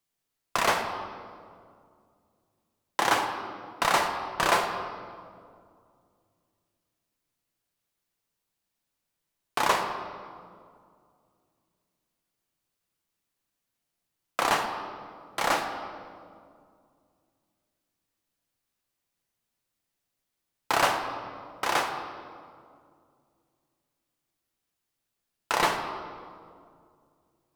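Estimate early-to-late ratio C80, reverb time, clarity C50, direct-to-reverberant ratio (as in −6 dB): 8.0 dB, 2.2 s, 6.5 dB, 3.5 dB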